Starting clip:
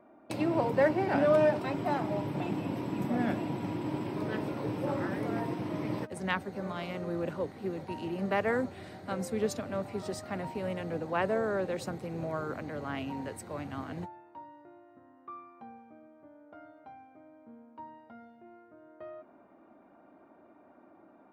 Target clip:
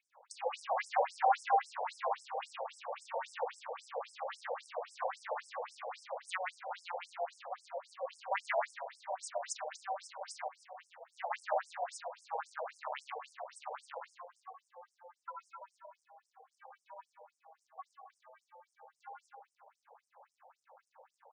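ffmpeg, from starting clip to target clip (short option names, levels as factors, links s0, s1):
-filter_complex "[0:a]asoftclip=type=tanh:threshold=0.126,aeval=exprs='val(0)*sin(2*PI*180*n/s)':c=same,lowshelf=f=110:g=-3,asplit=2[s0][s1];[s1]aecho=0:1:125.4|177.8|236.2:0.794|0.282|0.282[s2];[s0][s2]amix=inputs=2:normalize=0,acrusher=bits=6:mode=log:mix=0:aa=0.000001,asettb=1/sr,asplit=3[s3][s4][s5];[s3]atrim=end=10.484[s6];[s4]atrim=start=10.48:end=11.42,asetpts=PTS-STARTPTS,afade=t=in:d=0.004:c=qsin,afade=t=out:st=0.936:d=0.004:c=qsin,agate=range=0.251:threshold=0.0316:ratio=16:detection=peak[s7];[s5]atrim=start=11.416[s8];[s6][s7]acrossfade=d=0.004:c1=hsin:c2=qsin[s9];[s9][s8]acrossfade=d=0.004:c1=qsin:c2=hsin,asettb=1/sr,asplit=3[s10][s11][s12];[s10]atrim=end=14.614[s13];[s11]atrim=start=14.61:end=15.54,asetpts=PTS-STARTPTS,afade=t=in:d=0.004:c=qsin,afade=t=out:st=0.926:d=0.004:c=qsin,aecho=1:1:5.8:0.44,atrim=end_sample=41013[s14];[s12]atrim=start=15.536[s15];[s13][s14]acrossfade=d=0.004:c1=hsin:c2=qsin[s16];[s16][s15]acrossfade=d=0.004:c1=qsin:c2=hsin,asplit=2[s17][s18];[s18]aecho=0:1:322:0.133[s19];[s17][s19]amix=inputs=2:normalize=0,afftfilt=real='re*between(b*sr/1024,650*pow(7200/650,0.5+0.5*sin(2*PI*3.7*pts/sr))/1.41,650*pow(7200/650,0.5+0.5*sin(2*PI*3.7*pts/sr))*1.41)':imag='im*between(b*sr/1024,650*pow(7200/650,0.5+0.5*sin(2*PI*3.7*pts/sr))/1.41,650*pow(7200/650,0.5+0.5*sin(2*PI*3.7*pts/sr))*1.41)':win_size=1024:overlap=0.75,volume=1.68"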